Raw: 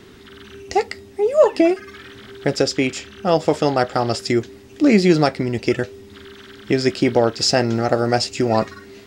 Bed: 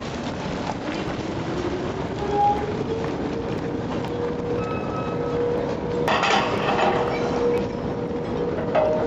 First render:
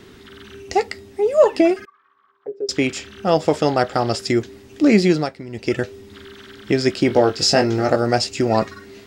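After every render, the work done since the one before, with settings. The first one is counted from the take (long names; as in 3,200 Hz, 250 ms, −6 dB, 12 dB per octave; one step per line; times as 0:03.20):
0:01.85–0:02.69: envelope filter 400–1,300 Hz, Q 16, down, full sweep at −18 dBFS
0:05.02–0:05.79: duck −12 dB, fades 0.31 s
0:07.08–0:07.96: double-tracking delay 20 ms −5 dB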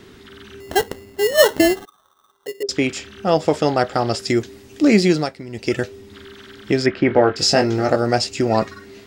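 0:00.60–0:02.63: sample-rate reduction 2,400 Hz
0:04.28–0:05.88: high-shelf EQ 4,500 Hz +5.5 dB
0:06.86–0:07.36: low-pass with resonance 1,900 Hz, resonance Q 1.8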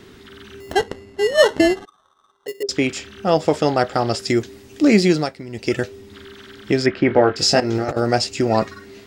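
0:00.73–0:02.48: high-frequency loss of the air 68 metres
0:07.60–0:08.01: compressor whose output falls as the input rises −21 dBFS, ratio −0.5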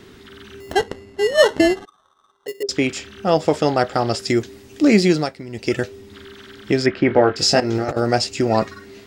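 no processing that can be heard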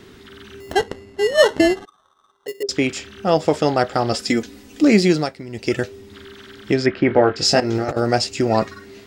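0:04.12–0:04.84: comb filter 4 ms
0:06.74–0:07.45: high-frequency loss of the air 51 metres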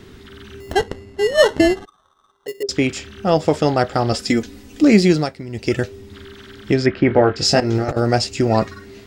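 low-shelf EQ 120 Hz +10 dB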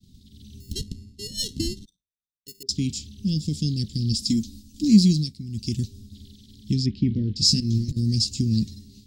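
downward expander −35 dBFS
elliptic band-stop filter 220–4,100 Hz, stop band 70 dB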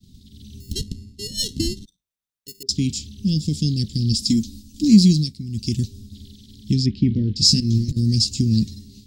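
level +4 dB
brickwall limiter −3 dBFS, peak gain reduction 1.5 dB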